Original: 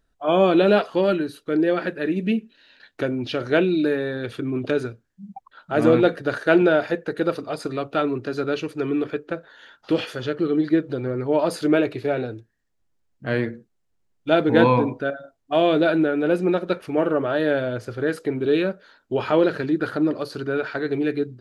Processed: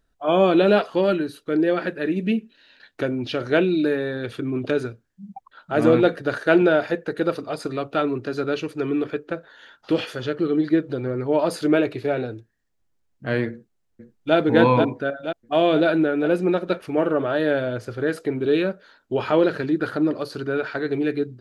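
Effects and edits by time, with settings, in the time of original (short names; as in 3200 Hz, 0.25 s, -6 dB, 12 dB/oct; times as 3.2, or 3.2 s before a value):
13.51–14.36 echo throw 0.48 s, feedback 60%, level -5 dB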